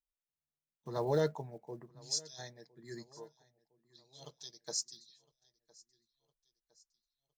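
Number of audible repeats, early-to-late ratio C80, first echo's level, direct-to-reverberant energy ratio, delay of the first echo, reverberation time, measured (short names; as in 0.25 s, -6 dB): 2, none, -24.0 dB, none, 1.01 s, none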